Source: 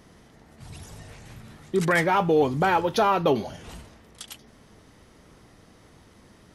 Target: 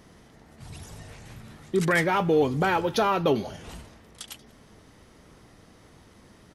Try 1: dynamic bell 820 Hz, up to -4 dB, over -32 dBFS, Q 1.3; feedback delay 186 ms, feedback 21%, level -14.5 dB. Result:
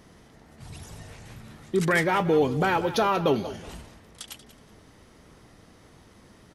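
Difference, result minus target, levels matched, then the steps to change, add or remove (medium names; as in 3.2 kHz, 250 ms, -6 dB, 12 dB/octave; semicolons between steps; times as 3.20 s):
echo-to-direct +11.5 dB
change: feedback delay 186 ms, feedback 21%, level -26 dB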